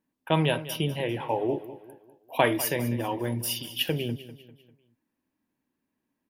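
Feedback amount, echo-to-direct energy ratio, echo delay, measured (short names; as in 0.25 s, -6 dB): 43%, -14.0 dB, 0.198 s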